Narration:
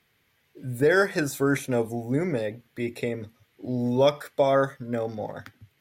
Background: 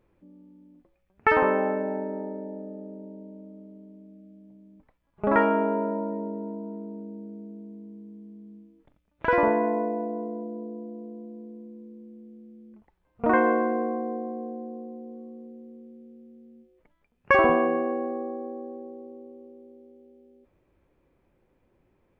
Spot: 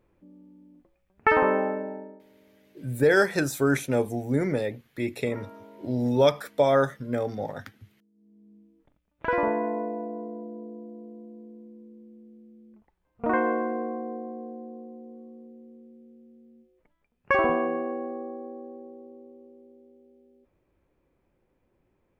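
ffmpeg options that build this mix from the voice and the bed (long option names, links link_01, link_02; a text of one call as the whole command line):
ffmpeg -i stem1.wav -i stem2.wav -filter_complex "[0:a]adelay=2200,volume=0.5dB[link_01];[1:a]volume=20dB,afade=type=out:start_time=1.55:duration=0.67:silence=0.0668344,afade=type=in:start_time=8.13:duration=0.7:silence=0.1[link_02];[link_01][link_02]amix=inputs=2:normalize=0" out.wav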